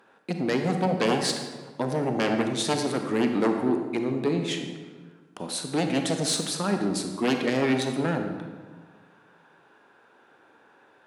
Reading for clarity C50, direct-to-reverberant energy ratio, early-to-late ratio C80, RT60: 5.5 dB, 4.5 dB, 7.0 dB, 1.5 s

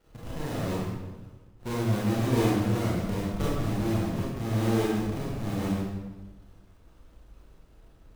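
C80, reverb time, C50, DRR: 1.0 dB, 1.2 s, -2.5 dB, -7.5 dB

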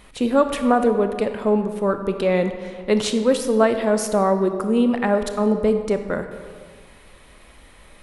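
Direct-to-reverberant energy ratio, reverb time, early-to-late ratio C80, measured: 7.5 dB, 1.8 s, 10.0 dB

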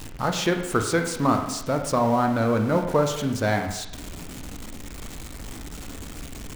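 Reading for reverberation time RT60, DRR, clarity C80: 0.85 s, 4.5 dB, 9.5 dB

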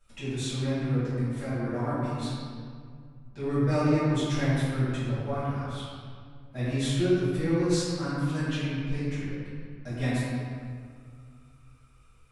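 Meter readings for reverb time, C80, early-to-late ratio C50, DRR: 2.1 s, -2.0 dB, -4.0 dB, -14.5 dB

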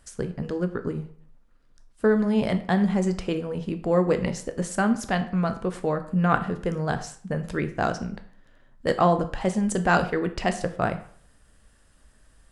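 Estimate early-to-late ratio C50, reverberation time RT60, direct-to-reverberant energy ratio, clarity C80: 13.0 dB, 0.55 s, 8.0 dB, 16.5 dB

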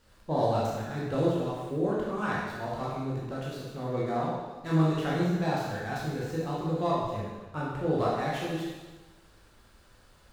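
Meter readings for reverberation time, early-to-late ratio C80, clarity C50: 1.3 s, 2.0 dB, -1.0 dB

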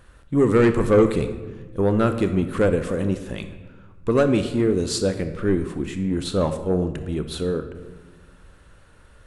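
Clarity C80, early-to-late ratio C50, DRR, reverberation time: 12.0 dB, 10.0 dB, 8.5 dB, 1.3 s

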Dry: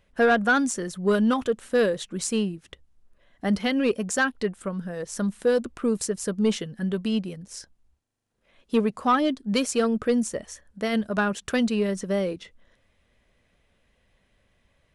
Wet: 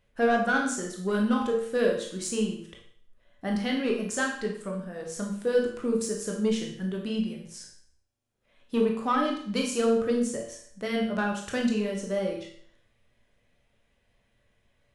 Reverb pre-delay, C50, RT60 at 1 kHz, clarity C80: 18 ms, 4.5 dB, 0.55 s, 8.5 dB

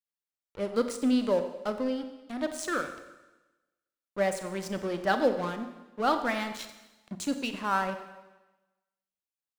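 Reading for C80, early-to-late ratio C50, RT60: 10.5 dB, 9.5 dB, 1.1 s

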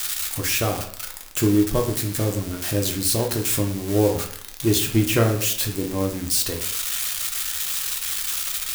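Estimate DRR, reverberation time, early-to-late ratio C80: 1.5 dB, 0.60 s, 11.5 dB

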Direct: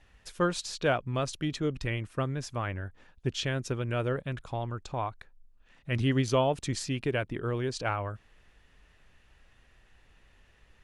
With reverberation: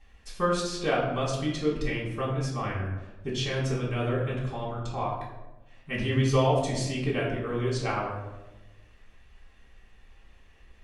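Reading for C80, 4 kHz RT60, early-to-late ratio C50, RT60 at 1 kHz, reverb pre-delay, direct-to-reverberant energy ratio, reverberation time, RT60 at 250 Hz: 6.0 dB, 0.60 s, 3.5 dB, 0.95 s, 3 ms, -5.5 dB, 1.1 s, 1.4 s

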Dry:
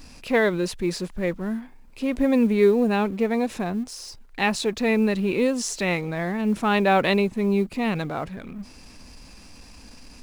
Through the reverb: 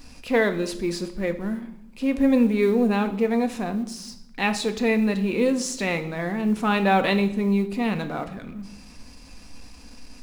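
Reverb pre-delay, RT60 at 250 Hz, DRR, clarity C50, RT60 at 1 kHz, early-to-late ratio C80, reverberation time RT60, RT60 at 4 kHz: 3 ms, 1.2 s, 7.0 dB, 13.0 dB, 0.70 s, 16.0 dB, 0.75 s, 0.65 s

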